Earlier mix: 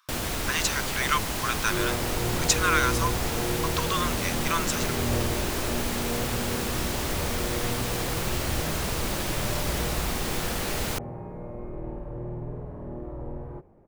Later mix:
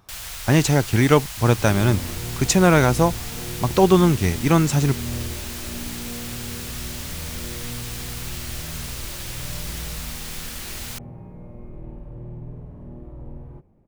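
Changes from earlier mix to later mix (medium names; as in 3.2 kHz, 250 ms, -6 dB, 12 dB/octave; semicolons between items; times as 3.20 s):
speech: remove rippled Chebyshev high-pass 1 kHz, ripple 3 dB; first sound: add amplifier tone stack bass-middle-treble 10-0-10; second sound: add high-order bell 800 Hz -8 dB 2.8 oct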